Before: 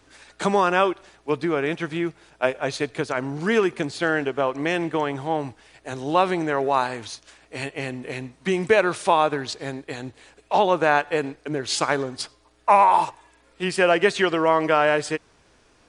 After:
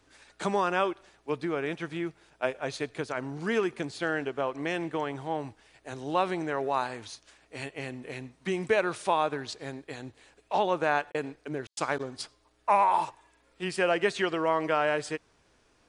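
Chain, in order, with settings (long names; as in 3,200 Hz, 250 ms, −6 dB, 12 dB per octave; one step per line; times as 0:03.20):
0:11.10–0:11.99: gate pattern "xx.xx..xxx" 144 BPM −60 dB
level −7.5 dB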